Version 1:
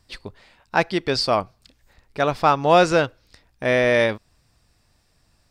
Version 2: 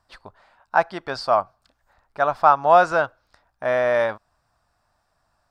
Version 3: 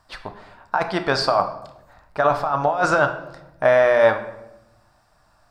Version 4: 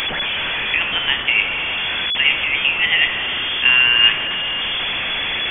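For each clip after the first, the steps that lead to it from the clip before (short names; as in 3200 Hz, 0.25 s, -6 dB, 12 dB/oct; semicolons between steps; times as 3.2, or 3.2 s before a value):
band shelf 980 Hz +13.5 dB; gain -10.5 dB
negative-ratio compressor -22 dBFS, ratio -1; shoebox room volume 310 m³, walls mixed, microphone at 0.5 m; gain +4 dB
delta modulation 32 kbps, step -17.5 dBFS; inverted band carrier 3400 Hz; gain +1.5 dB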